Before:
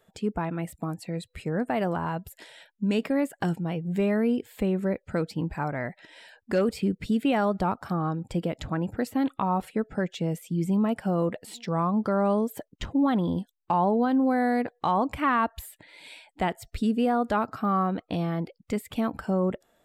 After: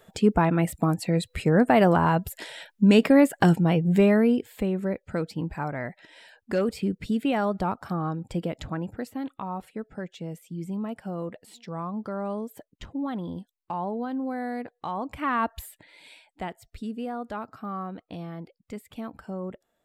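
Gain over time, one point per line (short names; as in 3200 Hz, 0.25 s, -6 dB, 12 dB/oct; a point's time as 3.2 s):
3.82 s +8.5 dB
4.7 s -1 dB
8.61 s -1 dB
9.23 s -7.5 dB
14.97 s -7.5 dB
15.55 s +1 dB
16.63 s -9 dB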